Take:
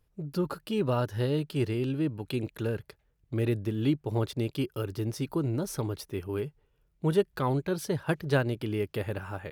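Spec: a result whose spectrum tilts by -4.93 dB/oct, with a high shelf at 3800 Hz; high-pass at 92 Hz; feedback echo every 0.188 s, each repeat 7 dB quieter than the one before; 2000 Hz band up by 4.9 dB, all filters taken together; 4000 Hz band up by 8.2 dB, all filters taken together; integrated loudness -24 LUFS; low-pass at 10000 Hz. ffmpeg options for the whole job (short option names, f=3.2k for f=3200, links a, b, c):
-af "highpass=92,lowpass=10k,equalizer=f=2k:t=o:g=3.5,highshelf=f=3.8k:g=7.5,equalizer=f=4k:t=o:g=5,aecho=1:1:188|376|564|752|940:0.447|0.201|0.0905|0.0407|0.0183,volume=5.5dB"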